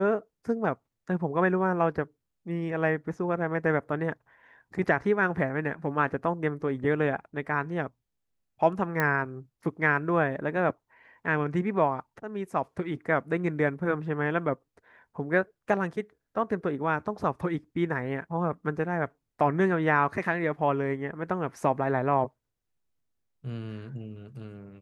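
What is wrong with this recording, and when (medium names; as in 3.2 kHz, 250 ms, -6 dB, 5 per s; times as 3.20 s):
9.00 s: pop -13 dBFS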